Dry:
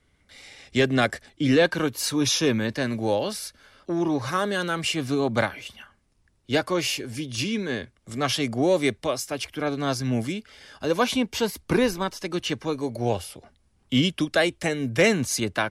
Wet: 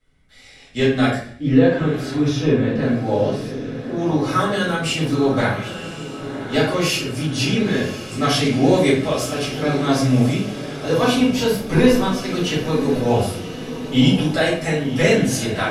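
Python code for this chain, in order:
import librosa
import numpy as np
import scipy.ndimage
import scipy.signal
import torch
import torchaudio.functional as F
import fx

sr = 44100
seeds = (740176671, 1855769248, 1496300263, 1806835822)

y = fx.lowpass(x, sr, hz=1100.0, slope=6, at=(1.3, 3.96))
y = fx.rider(y, sr, range_db=10, speed_s=2.0)
y = fx.echo_diffused(y, sr, ms=1058, feedback_pct=57, wet_db=-11.5)
y = fx.room_shoebox(y, sr, seeds[0], volume_m3=73.0, walls='mixed', distance_m=2.2)
y = y * 10.0 ** (-5.5 / 20.0)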